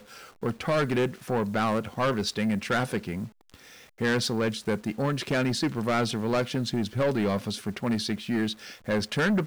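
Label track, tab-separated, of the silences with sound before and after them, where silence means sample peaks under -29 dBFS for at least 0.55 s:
3.240000	4.010000	silence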